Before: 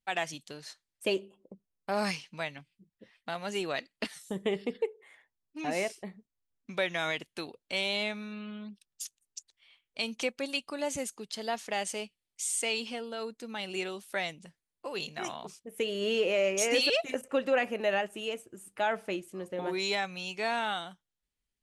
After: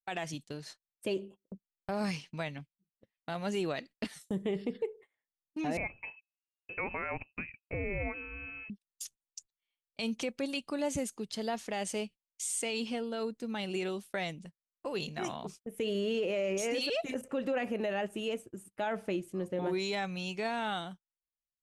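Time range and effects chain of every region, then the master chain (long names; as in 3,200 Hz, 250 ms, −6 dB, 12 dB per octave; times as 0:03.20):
0:05.77–0:08.70: hum removal 70.9 Hz, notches 4 + voice inversion scrambler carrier 2,800 Hz
whole clip: noise gate −49 dBFS, range −26 dB; low-shelf EQ 390 Hz +11 dB; brickwall limiter −22.5 dBFS; level −2.5 dB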